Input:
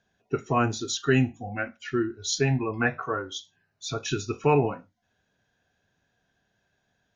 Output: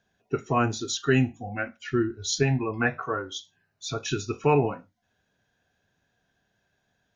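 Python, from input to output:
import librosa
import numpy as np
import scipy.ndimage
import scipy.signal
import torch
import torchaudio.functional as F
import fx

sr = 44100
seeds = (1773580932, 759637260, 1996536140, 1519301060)

y = fx.low_shelf(x, sr, hz=140.0, db=8.5, at=(1.87, 2.43))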